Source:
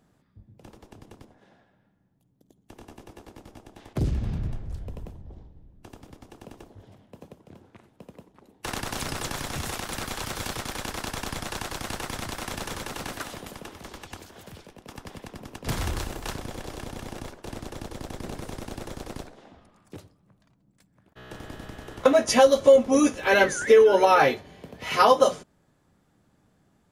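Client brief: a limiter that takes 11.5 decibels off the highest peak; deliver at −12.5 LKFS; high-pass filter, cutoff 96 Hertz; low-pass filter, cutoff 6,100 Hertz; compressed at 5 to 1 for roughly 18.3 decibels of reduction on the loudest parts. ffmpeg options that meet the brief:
ffmpeg -i in.wav -af "highpass=96,lowpass=6100,acompressor=threshold=-33dB:ratio=5,volume=28.5dB,alimiter=limit=0dB:level=0:latency=1" out.wav

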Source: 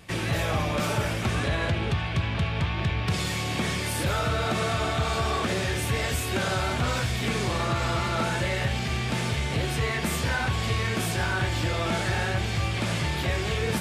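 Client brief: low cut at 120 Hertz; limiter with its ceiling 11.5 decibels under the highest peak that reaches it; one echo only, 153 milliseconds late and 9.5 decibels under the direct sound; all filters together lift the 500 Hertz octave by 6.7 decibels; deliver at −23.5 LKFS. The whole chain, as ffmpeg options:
ffmpeg -i in.wav -af "highpass=120,equalizer=frequency=500:width_type=o:gain=8.5,alimiter=limit=-23dB:level=0:latency=1,aecho=1:1:153:0.335,volume=7.5dB" out.wav

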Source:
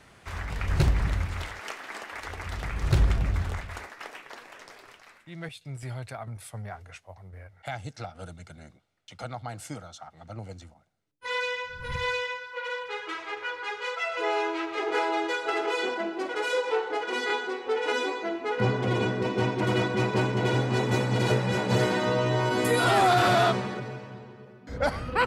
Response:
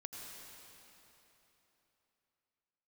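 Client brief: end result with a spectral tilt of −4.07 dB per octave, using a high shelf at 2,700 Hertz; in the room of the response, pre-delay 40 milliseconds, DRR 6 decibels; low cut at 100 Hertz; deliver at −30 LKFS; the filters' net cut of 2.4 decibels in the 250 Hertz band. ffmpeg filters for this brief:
-filter_complex "[0:a]highpass=100,equalizer=frequency=250:width_type=o:gain=-3.5,highshelf=frequency=2700:gain=6.5,asplit=2[link_01][link_02];[1:a]atrim=start_sample=2205,adelay=40[link_03];[link_02][link_03]afir=irnorm=-1:irlink=0,volume=-3.5dB[link_04];[link_01][link_04]amix=inputs=2:normalize=0,volume=-3.5dB"

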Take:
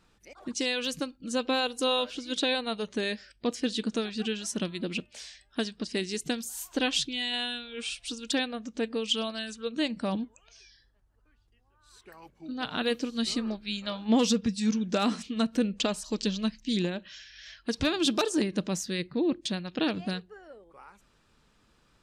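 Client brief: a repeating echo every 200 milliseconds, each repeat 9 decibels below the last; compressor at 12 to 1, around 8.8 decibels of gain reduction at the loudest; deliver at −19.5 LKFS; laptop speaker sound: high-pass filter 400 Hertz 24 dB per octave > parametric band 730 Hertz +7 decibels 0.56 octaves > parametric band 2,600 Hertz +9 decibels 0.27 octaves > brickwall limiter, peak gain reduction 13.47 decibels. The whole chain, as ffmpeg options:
ffmpeg -i in.wav -af "acompressor=threshold=-29dB:ratio=12,highpass=frequency=400:width=0.5412,highpass=frequency=400:width=1.3066,equalizer=frequency=730:width_type=o:width=0.56:gain=7,equalizer=frequency=2600:width_type=o:width=0.27:gain=9,aecho=1:1:200|400|600|800:0.355|0.124|0.0435|0.0152,volume=20dB,alimiter=limit=-9.5dB:level=0:latency=1" out.wav

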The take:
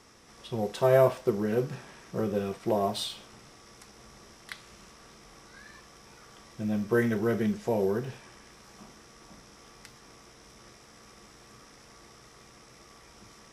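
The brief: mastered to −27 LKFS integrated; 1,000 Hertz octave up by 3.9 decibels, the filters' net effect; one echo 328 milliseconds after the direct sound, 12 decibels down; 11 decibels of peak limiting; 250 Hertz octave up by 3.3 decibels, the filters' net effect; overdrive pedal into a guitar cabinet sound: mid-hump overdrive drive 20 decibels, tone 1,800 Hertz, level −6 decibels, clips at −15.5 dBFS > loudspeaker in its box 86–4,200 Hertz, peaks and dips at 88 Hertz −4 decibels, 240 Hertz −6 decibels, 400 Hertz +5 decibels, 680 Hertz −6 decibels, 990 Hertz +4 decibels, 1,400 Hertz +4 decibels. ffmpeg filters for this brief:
ffmpeg -i in.wav -filter_complex "[0:a]equalizer=frequency=250:width_type=o:gain=6.5,equalizer=frequency=1000:width_type=o:gain=4,alimiter=limit=-17.5dB:level=0:latency=1,aecho=1:1:328:0.251,asplit=2[link_01][link_02];[link_02]highpass=frequency=720:poles=1,volume=20dB,asoftclip=type=tanh:threshold=-15.5dB[link_03];[link_01][link_03]amix=inputs=2:normalize=0,lowpass=frequency=1800:poles=1,volume=-6dB,highpass=86,equalizer=frequency=88:width_type=q:width=4:gain=-4,equalizer=frequency=240:width_type=q:width=4:gain=-6,equalizer=frequency=400:width_type=q:width=4:gain=5,equalizer=frequency=680:width_type=q:width=4:gain=-6,equalizer=frequency=990:width_type=q:width=4:gain=4,equalizer=frequency=1400:width_type=q:width=4:gain=4,lowpass=frequency=4200:width=0.5412,lowpass=frequency=4200:width=1.3066,volume=-0.5dB" out.wav

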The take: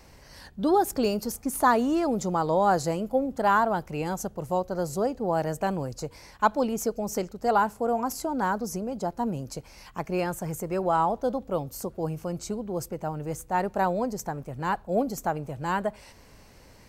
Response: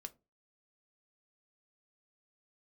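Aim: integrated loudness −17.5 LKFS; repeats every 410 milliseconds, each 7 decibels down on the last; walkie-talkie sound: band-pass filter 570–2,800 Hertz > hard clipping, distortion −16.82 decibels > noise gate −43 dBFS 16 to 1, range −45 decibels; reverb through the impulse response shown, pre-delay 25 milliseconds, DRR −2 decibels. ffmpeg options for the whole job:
-filter_complex "[0:a]aecho=1:1:410|820|1230|1640|2050:0.447|0.201|0.0905|0.0407|0.0183,asplit=2[link_01][link_02];[1:a]atrim=start_sample=2205,adelay=25[link_03];[link_02][link_03]afir=irnorm=-1:irlink=0,volume=7dB[link_04];[link_01][link_04]amix=inputs=2:normalize=0,highpass=570,lowpass=2800,asoftclip=type=hard:threshold=-14.5dB,agate=range=-45dB:threshold=-43dB:ratio=16,volume=9.5dB"

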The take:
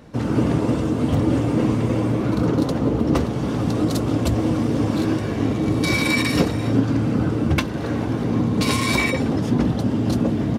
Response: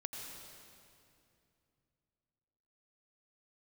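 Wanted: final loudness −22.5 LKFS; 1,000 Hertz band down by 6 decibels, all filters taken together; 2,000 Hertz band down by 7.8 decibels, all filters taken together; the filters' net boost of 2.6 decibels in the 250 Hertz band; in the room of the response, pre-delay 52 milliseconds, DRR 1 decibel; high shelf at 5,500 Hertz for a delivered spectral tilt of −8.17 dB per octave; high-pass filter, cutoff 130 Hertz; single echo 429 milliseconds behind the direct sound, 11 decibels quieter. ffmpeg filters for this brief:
-filter_complex "[0:a]highpass=130,equalizer=frequency=250:width_type=o:gain=4,equalizer=frequency=1000:width_type=o:gain=-6,equalizer=frequency=2000:width_type=o:gain=-7,highshelf=frequency=5500:gain=-8,aecho=1:1:429:0.282,asplit=2[link_01][link_02];[1:a]atrim=start_sample=2205,adelay=52[link_03];[link_02][link_03]afir=irnorm=-1:irlink=0,volume=0dB[link_04];[link_01][link_04]amix=inputs=2:normalize=0,volume=-5.5dB"

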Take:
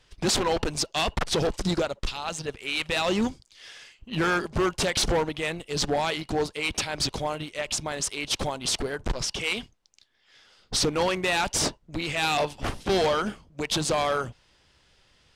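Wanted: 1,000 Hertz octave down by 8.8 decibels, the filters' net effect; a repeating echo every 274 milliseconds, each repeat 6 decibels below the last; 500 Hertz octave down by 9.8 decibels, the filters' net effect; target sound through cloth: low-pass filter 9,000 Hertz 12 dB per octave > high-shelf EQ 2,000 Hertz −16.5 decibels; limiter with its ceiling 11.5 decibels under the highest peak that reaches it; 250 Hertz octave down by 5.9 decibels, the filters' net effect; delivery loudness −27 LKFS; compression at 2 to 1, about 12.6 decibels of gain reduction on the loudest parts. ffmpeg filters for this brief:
ffmpeg -i in.wav -af "equalizer=frequency=250:width_type=o:gain=-5,equalizer=frequency=500:width_type=o:gain=-8.5,equalizer=frequency=1000:width_type=o:gain=-4,acompressor=threshold=-47dB:ratio=2,alimiter=level_in=13.5dB:limit=-24dB:level=0:latency=1,volume=-13.5dB,lowpass=9000,highshelf=frequency=2000:gain=-16.5,aecho=1:1:274|548|822|1096|1370|1644:0.501|0.251|0.125|0.0626|0.0313|0.0157,volume=23.5dB" out.wav

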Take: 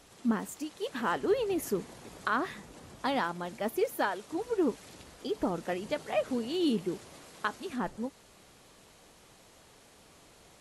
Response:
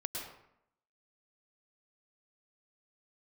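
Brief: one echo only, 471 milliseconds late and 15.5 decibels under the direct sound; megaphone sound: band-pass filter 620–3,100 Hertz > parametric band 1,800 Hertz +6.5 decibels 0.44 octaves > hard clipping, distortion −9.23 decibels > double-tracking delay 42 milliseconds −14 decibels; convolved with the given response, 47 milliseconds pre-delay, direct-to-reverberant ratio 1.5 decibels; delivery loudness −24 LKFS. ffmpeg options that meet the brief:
-filter_complex "[0:a]aecho=1:1:471:0.168,asplit=2[link_01][link_02];[1:a]atrim=start_sample=2205,adelay=47[link_03];[link_02][link_03]afir=irnorm=-1:irlink=0,volume=-3dB[link_04];[link_01][link_04]amix=inputs=2:normalize=0,highpass=620,lowpass=3100,equalizer=frequency=1800:width_type=o:width=0.44:gain=6.5,asoftclip=type=hard:threshold=-29dB,asplit=2[link_05][link_06];[link_06]adelay=42,volume=-14dB[link_07];[link_05][link_07]amix=inputs=2:normalize=0,volume=12dB"

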